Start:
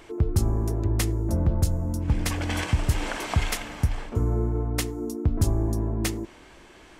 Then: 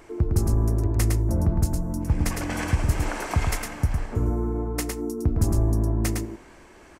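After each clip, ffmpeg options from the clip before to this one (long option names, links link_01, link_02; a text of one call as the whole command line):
ffmpeg -i in.wav -af "equalizer=frequency=3400:width_type=o:width=0.76:gain=-9,aecho=1:1:108:0.631" out.wav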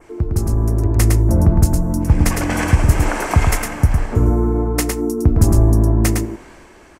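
ffmpeg -i in.wav -af "adynamicequalizer=threshold=0.00251:dfrequency=4100:dqfactor=1.4:tfrequency=4100:tqfactor=1.4:attack=5:release=100:ratio=0.375:range=2.5:mode=cutabove:tftype=bell,dynaudnorm=framelen=240:gausssize=7:maxgain=7dB,volume=3dB" out.wav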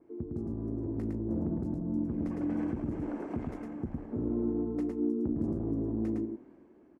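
ffmpeg -i in.wav -af "asoftclip=type=hard:threshold=-12.5dB,bandpass=frequency=270:width_type=q:width=2.1:csg=0,volume=-7dB" out.wav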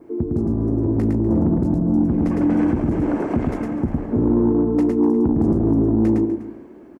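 ffmpeg -i in.wav -filter_complex "[0:a]asplit=2[link_01][link_02];[link_02]aeval=exprs='0.106*sin(PI/2*1.78*val(0)/0.106)':channel_layout=same,volume=-4.5dB[link_03];[link_01][link_03]amix=inputs=2:normalize=0,aecho=1:1:247:0.168,volume=7.5dB" out.wav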